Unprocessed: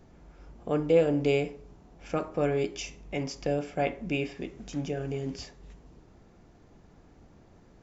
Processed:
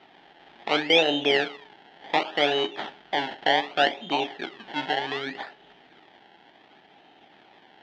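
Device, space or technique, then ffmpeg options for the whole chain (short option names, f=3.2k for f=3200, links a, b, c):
circuit-bent sampling toy: -af "acrusher=samples=25:mix=1:aa=0.000001:lfo=1:lforange=25:lforate=0.67,highpass=430,equalizer=f=500:t=q:w=4:g=-7,equalizer=f=810:t=q:w=4:g=9,equalizer=f=1.1k:t=q:w=4:g=-7,equalizer=f=1.8k:t=q:w=4:g=6,equalizer=f=3.2k:t=q:w=4:g=9,lowpass=f=4.2k:w=0.5412,lowpass=f=4.2k:w=1.3066,volume=7dB"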